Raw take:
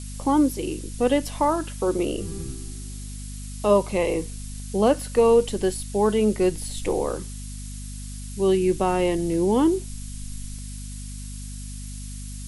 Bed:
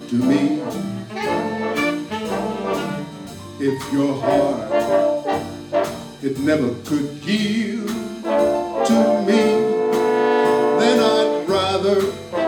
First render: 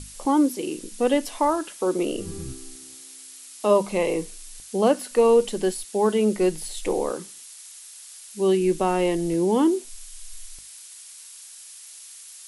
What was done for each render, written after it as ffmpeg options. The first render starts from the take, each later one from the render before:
-af "bandreject=f=50:t=h:w=6,bandreject=f=100:t=h:w=6,bandreject=f=150:t=h:w=6,bandreject=f=200:t=h:w=6,bandreject=f=250:t=h:w=6"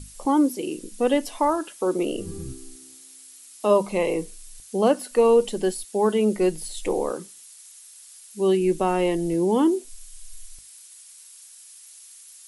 -af "afftdn=nr=6:nf=-44"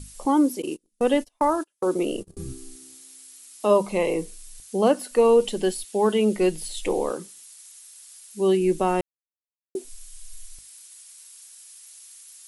-filter_complex "[0:a]asettb=1/sr,asplit=3[a][b][c];[a]atrim=end=0.624[d];[b]atrim=start=0.62:end=2.37,asetpts=PTS-STARTPTS,afade=t=in:d=0.004:c=qsin,afade=t=out:st=1.746:d=0.004:c=qsin,agate=range=-34dB:threshold=-31dB:ratio=16:release=100:detection=peak[e];[c]atrim=start=2.366[f];[d][e]acrossfade=d=0.004:c1=hsin:c2=qsin[g];[g][f]acrossfade=d=0.004:c1=qsin:c2=hsin,asettb=1/sr,asplit=3[h][i][j];[h]atrim=end=5.404[k];[i]atrim=start=5.4:end=7.15,asetpts=PTS-STARTPTS,afade=t=in:d=0.004:c=qsin,afade=t=out:st=1.746:d=0.004:c=qsin,equalizer=f=3k:w=1.5:g=4.5[l];[j]atrim=start=7.146[m];[k][l]acrossfade=d=0.004:c1=hsin:c2=qsin[n];[n][m]acrossfade=d=0.004:c1=qsin:c2=hsin,asplit=3[o][p][q];[o]atrim=end=9.01,asetpts=PTS-STARTPTS,afade=t=out:st=9.006:d=0.004:c=hsin[r];[p]atrim=start=9.01:end=9.75,asetpts=PTS-STARTPTS,volume=0[s];[q]atrim=start=9.75,asetpts=PTS-STARTPTS,afade=t=in:d=0.004:c=hsin[t];[r][s][t]concat=n=3:v=0:a=1"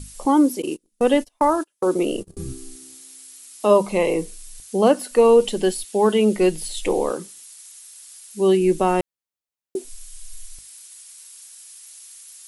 -af "volume=3.5dB"

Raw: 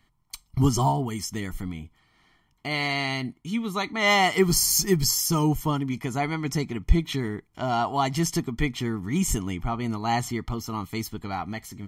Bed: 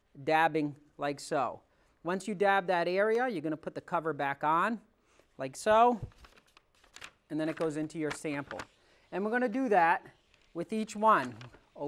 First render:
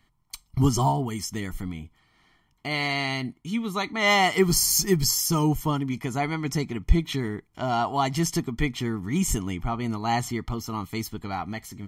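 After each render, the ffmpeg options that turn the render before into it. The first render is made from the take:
-af anull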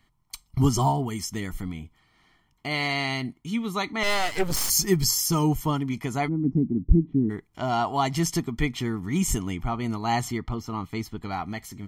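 -filter_complex "[0:a]asettb=1/sr,asplit=3[a][b][c];[a]atrim=end=4.034[d];[b]atrim=start=4.03:end=4.7,asetpts=PTS-STARTPTS,afade=t=in:d=0.004:c=qsin,afade=t=out:st=0.666:d=0.004:c=qsin,aeval=exprs='max(val(0),0)':c=same[e];[c]atrim=start=4.696[f];[d][e]acrossfade=d=0.004:c1=hsin:c2=qsin[g];[g][f]acrossfade=d=0.004:c1=qsin:c2=hsin,asplit=3[h][i][j];[h]afade=t=out:st=6.27:d=0.02[k];[i]lowpass=f=270:t=q:w=2.9,afade=t=in:st=6.27:d=0.02,afade=t=out:st=7.29:d=0.02[l];[j]afade=t=in:st=7.29:d=0.02[m];[k][l][m]amix=inputs=3:normalize=0,asettb=1/sr,asplit=3[n][o][p];[n]atrim=end=10.384[q];[o]atrim=start=10.38:end=11.23,asetpts=PTS-STARTPTS,afade=t=in:d=0.004:c=qsin,afade=t=out:st=0.846:d=0.004:c=qsin,lowpass=f=3.1k:p=1[r];[p]atrim=start=11.226[s];[q][r]acrossfade=d=0.004:c1=hsin:c2=qsin[t];[t][s]acrossfade=d=0.004:c1=qsin:c2=hsin"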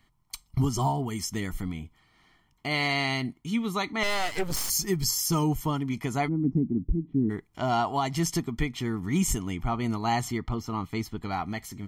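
-af "alimiter=limit=-16dB:level=0:latency=1:release=405"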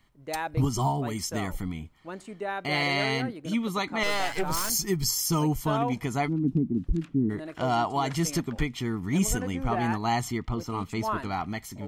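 -filter_complex "[1:a]volume=-6dB[a];[0:a][a]amix=inputs=2:normalize=0"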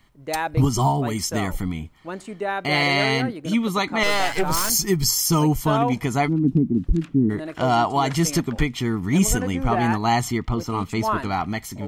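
-af "volume=6.5dB"

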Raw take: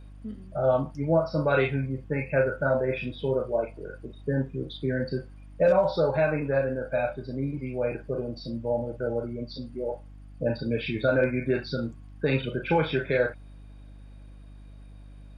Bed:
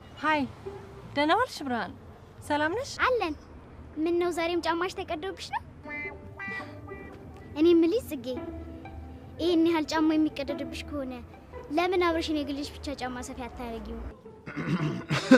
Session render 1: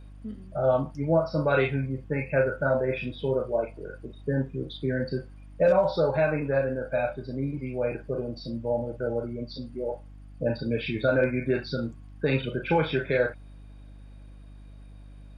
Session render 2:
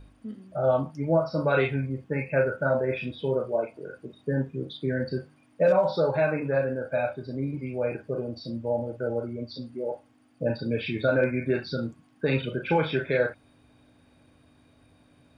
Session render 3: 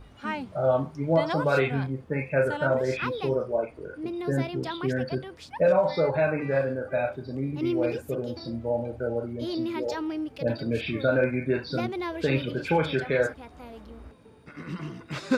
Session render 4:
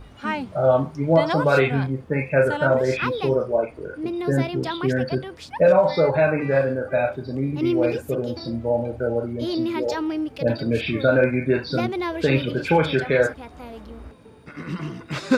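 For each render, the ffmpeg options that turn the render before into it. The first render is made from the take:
-af anull
-af "bandreject=f=50:t=h:w=4,bandreject=f=100:t=h:w=4,bandreject=f=150:t=h:w=4,bandreject=f=200:t=h:w=4"
-filter_complex "[1:a]volume=-7dB[a];[0:a][a]amix=inputs=2:normalize=0"
-af "volume=5.5dB"

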